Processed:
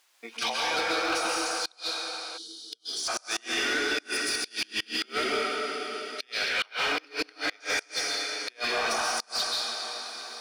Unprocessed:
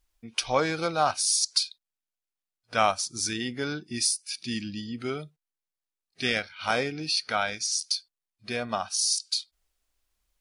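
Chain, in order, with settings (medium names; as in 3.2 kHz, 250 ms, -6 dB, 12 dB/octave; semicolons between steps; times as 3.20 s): bass shelf 440 Hz -6.5 dB; in parallel at -9 dB: short-mantissa float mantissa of 2-bit; on the sum: compressor with a negative ratio -36 dBFS, ratio -1; high-pass 320 Hz 24 dB/octave; on a send: echo that smears into a reverb 456 ms, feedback 60%, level -12 dB; on the sum: plate-style reverb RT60 2.6 s, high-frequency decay 0.5×, pre-delay 115 ms, DRR -4 dB; inverted gate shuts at -18 dBFS, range -31 dB; time-frequency box 2.38–3.08 s, 460–2900 Hz -26 dB; overdrive pedal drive 16 dB, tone 5.1 kHz, clips at -15 dBFS; trim -2.5 dB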